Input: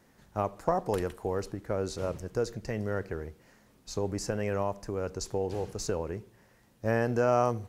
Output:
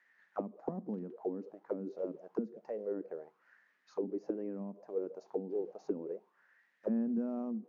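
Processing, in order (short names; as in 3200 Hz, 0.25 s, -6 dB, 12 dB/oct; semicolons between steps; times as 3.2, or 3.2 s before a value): FFT band-pass 140–7000 Hz; companded quantiser 6-bit; auto-wah 220–1900 Hz, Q 6.3, down, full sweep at -26.5 dBFS; gain +4.5 dB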